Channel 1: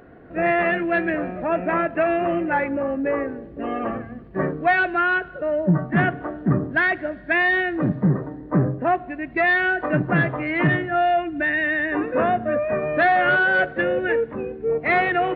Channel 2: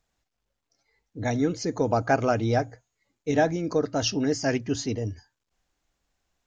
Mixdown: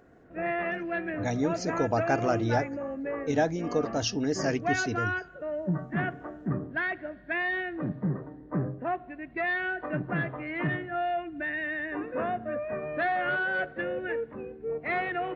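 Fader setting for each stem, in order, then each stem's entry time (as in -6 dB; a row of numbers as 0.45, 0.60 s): -10.5, -3.5 dB; 0.00, 0.00 s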